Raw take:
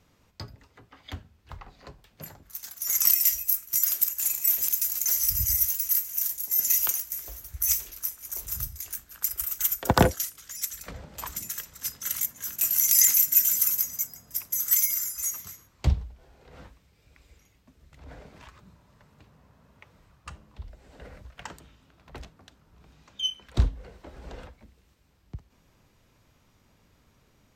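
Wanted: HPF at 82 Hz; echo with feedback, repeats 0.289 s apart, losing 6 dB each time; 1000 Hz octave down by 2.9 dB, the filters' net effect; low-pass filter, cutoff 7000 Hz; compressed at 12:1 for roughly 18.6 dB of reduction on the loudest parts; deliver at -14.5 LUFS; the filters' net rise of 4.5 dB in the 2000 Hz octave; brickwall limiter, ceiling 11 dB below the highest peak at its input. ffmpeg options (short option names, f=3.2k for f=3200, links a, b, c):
-af "highpass=82,lowpass=7k,equalizer=f=1k:t=o:g=-5.5,equalizer=f=2k:t=o:g=7.5,acompressor=threshold=-33dB:ratio=12,alimiter=level_in=3.5dB:limit=-24dB:level=0:latency=1,volume=-3.5dB,aecho=1:1:289|578|867|1156|1445|1734:0.501|0.251|0.125|0.0626|0.0313|0.0157,volume=24.5dB"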